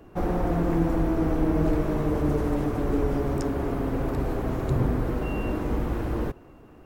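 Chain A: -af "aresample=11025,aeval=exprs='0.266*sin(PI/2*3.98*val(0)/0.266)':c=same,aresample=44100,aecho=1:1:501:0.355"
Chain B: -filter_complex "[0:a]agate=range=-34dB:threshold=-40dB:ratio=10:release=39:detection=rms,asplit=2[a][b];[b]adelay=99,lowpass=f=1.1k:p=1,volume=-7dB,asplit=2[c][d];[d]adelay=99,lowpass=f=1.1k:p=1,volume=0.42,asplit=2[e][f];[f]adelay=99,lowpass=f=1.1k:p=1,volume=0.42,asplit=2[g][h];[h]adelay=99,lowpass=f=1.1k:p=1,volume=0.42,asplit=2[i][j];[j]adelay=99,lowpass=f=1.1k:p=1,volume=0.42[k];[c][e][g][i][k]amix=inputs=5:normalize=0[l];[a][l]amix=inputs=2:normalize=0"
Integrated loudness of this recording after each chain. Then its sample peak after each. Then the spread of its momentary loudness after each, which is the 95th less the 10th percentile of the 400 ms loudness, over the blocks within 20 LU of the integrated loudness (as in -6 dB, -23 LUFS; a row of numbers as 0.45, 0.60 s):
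-16.0, -26.0 LUFS; -9.0, -10.5 dBFS; 1, 5 LU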